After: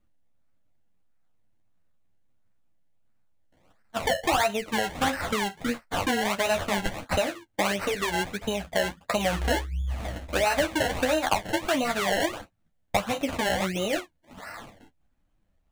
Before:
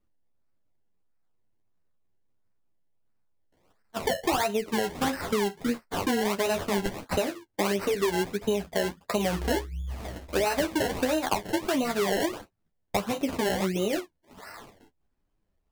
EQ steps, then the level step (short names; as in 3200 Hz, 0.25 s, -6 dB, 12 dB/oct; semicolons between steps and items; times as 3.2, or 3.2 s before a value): thirty-one-band EQ 400 Hz -11 dB, 1000 Hz -4 dB, 5000 Hz -5 dB, 16000 Hz -7 dB; dynamic EQ 210 Hz, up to -7 dB, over -43 dBFS, Q 0.86; high shelf 7900 Hz -6 dB; +5.5 dB